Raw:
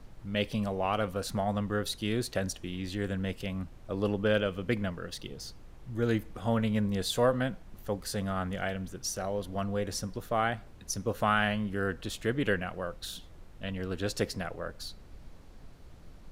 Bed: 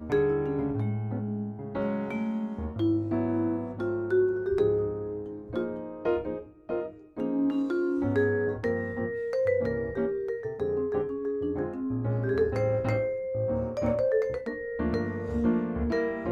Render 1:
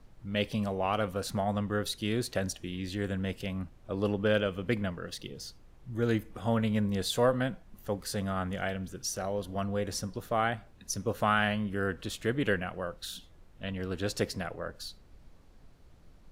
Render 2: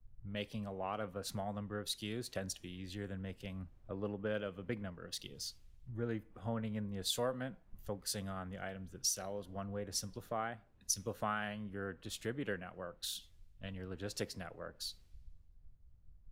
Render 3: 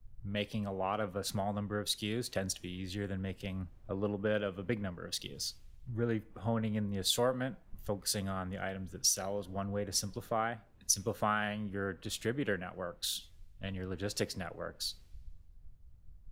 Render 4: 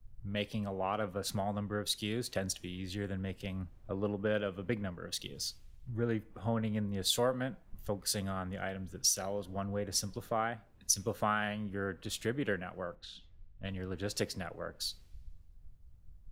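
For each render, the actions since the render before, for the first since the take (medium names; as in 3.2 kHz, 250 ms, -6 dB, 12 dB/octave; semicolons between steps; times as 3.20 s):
noise print and reduce 6 dB
compression 2.5:1, threshold -43 dBFS, peak gain reduction 15 dB; three bands expanded up and down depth 100%
trim +5.5 dB
4.95–5.36 s: band-stop 4.9 kHz; 12.95–13.65 s: tape spacing loss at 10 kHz 31 dB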